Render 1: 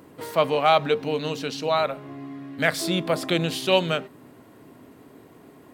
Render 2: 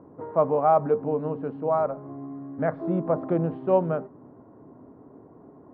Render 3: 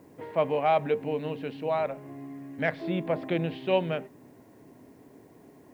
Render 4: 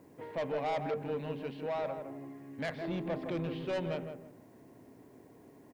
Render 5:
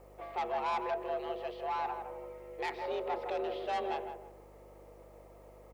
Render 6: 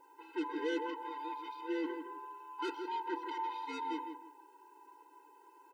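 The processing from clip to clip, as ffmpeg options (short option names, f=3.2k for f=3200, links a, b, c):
-af "lowpass=f=1.1k:w=0.5412,lowpass=f=1.1k:w=1.3066"
-af "aexciter=amount=11.3:drive=8.9:freq=2k,volume=-4dB"
-filter_complex "[0:a]asoftclip=type=tanh:threshold=-26dB,asplit=2[a][b];[b]adelay=161,lowpass=f=1.3k:p=1,volume=-6dB,asplit=2[c][d];[d]adelay=161,lowpass=f=1.3k:p=1,volume=0.29,asplit=2[e][f];[f]adelay=161,lowpass=f=1.3k:p=1,volume=0.29,asplit=2[g][h];[h]adelay=161,lowpass=f=1.3k:p=1,volume=0.29[i];[a][c][e][g][i]amix=inputs=5:normalize=0,volume=-4dB"
-af "afreqshift=220,aeval=exprs='val(0)+0.00126*(sin(2*PI*50*n/s)+sin(2*PI*2*50*n/s)/2+sin(2*PI*3*50*n/s)/3+sin(2*PI*4*50*n/s)/4+sin(2*PI*5*50*n/s)/5)':c=same"
-af "afftfilt=real='real(if(lt(b,1008),b+24*(1-2*mod(floor(b/24),2)),b),0)':imag='imag(if(lt(b,1008),b+24*(1-2*mod(floor(b/24),2)),b),0)':win_size=2048:overlap=0.75,afftfilt=real='re*eq(mod(floor(b*sr/1024/270),2),1)':imag='im*eq(mod(floor(b*sr/1024/270),2),1)':win_size=1024:overlap=0.75"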